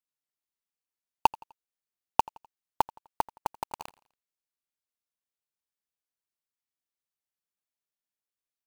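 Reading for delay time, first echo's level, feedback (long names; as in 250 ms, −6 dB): 84 ms, −23.0 dB, 45%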